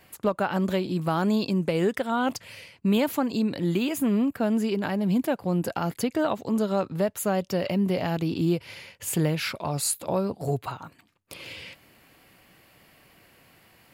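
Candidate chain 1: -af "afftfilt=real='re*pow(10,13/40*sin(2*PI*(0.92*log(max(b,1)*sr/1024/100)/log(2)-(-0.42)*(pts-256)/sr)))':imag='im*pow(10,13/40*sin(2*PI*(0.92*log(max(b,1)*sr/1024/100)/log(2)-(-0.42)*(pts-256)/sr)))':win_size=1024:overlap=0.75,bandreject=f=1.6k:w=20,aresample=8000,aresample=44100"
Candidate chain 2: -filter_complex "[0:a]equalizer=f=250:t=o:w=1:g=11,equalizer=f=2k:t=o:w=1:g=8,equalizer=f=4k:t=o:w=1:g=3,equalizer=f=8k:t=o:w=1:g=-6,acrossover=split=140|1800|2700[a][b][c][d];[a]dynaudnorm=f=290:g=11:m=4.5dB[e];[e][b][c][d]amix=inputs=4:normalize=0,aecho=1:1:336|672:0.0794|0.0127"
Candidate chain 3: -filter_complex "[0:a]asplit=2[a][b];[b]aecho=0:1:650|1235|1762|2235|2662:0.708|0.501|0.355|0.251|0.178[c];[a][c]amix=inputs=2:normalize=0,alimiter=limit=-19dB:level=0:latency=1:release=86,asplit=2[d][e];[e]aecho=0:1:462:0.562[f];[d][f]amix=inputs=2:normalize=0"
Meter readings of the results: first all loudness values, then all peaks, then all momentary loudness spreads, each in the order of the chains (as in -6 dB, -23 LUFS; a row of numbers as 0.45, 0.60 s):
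-24.5, -19.0, -27.0 LUFS; -9.5, -5.5, -15.5 dBFS; 14, 14, 7 LU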